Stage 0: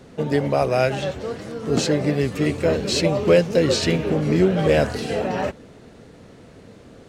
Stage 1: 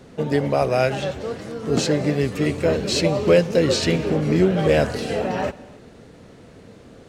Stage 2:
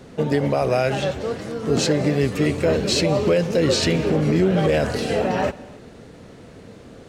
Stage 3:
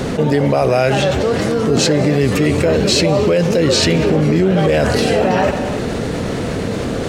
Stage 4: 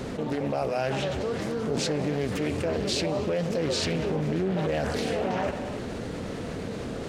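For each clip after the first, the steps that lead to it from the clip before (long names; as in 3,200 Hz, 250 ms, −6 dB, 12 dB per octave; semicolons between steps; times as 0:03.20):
convolution reverb, pre-delay 3 ms, DRR 18.5 dB
brickwall limiter −12 dBFS, peak gain reduction 8 dB; level +2.5 dB
envelope flattener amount 70%; level +3 dB
flanger 0.35 Hz, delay 3 ms, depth 2.1 ms, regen −84%; highs frequency-modulated by the lows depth 0.35 ms; level −9 dB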